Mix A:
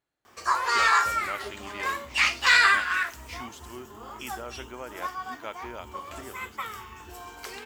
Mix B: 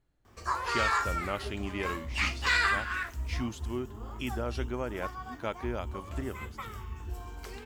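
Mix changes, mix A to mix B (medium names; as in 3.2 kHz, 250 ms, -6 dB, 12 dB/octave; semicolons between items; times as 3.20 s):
background -8.5 dB; master: remove high-pass 730 Hz 6 dB/octave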